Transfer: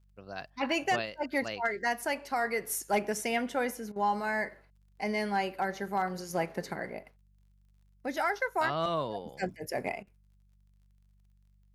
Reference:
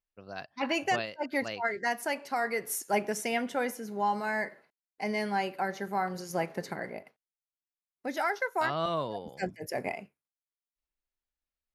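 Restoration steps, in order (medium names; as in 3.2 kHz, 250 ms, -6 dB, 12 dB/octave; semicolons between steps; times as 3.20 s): clip repair -20 dBFS; de-click; de-hum 48.8 Hz, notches 4; interpolate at 3.92/10.03 s, 38 ms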